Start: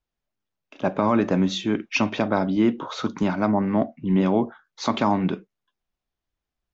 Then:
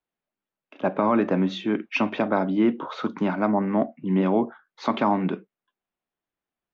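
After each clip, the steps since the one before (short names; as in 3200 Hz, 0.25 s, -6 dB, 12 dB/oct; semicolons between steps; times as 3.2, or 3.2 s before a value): three-band isolator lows -18 dB, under 150 Hz, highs -17 dB, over 3400 Hz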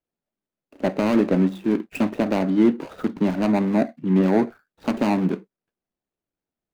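median filter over 41 samples; gain +4 dB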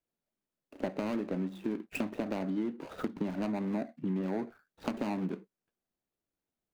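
compressor 10:1, threshold -28 dBFS, peak gain reduction 16 dB; gain -2.5 dB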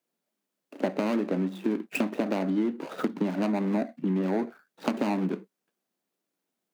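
HPF 170 Hz 24 dB/oct; gain +7 dB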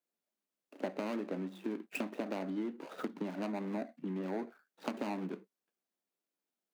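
low shelf 140 Hz -11 dB; gain -8.5 dB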